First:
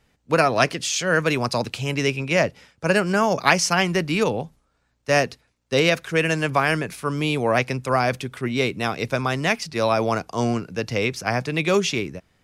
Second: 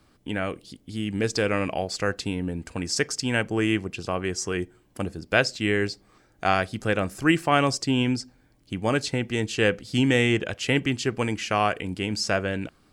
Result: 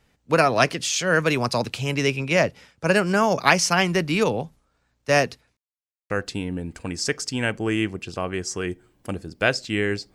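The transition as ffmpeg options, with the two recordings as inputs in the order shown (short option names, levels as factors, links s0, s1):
-filter_complex "[0:a]apad=whole_dur=10.14,atrim=end=10.14,asplit=2[s0][s1];[s0]atrim=end=5.57,asetpts=PTS-STARTPTS,afade=t=out:st=5.566:d=0.004:c=hsin[s2];[s1]atrim=start=5.57:end=6.1,asetpts=PTS-STARTPTS,volume=0[s3];[1:a]atrim=start=2.01:end=6.05,asetpts=PTS-STARTPTS,afade=t=in:d=0.004:c=hsin[s4];[s2][s3][s4]concat=n=3:v=0:a=1"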